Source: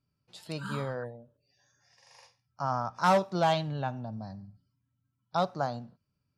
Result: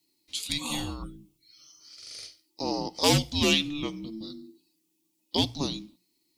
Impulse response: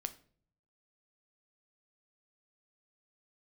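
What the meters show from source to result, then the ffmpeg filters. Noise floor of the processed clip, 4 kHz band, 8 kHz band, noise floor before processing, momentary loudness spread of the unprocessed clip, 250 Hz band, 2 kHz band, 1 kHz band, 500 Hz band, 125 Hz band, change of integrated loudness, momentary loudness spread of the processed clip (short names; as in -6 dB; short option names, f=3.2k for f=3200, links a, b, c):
-75 dBFS, +14.5 dB, +16.5 dB, -81 dBFS, 18 LU, +6.5 dB, +4.0 dB, -6.5 dB, -1.5 dB, +1.5 dB, +3.0 dB, 19 LU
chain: -af "afreqshift=-440,aexciter=amount=3.4:drive=9.1:freq=2.3k,bandreject=f=60:t=h:w=6,bandreject=f=120:t=h:w=6,bandreject=f=180:t=h:w=6"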